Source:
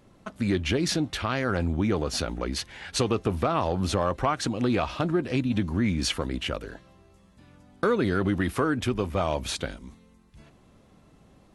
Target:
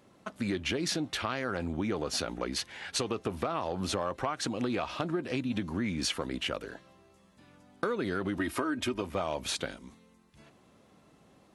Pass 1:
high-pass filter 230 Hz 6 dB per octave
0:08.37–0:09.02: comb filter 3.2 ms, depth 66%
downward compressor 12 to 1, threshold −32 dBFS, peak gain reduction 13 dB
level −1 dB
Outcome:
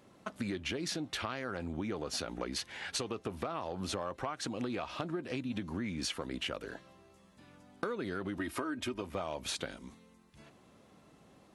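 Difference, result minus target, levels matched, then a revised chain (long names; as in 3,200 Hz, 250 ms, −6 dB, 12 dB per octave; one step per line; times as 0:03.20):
downward compressor: peak gain reduction +5.5 dB
high-pass filter 230 Hz 6 dB per octave
0:08.37–0:09.02: comb filter 3.2 ms, depth 66%
downward compressor 12 to 1, threshold −26 dBFS, peak gain reduction 7.5 dB
level −1 dB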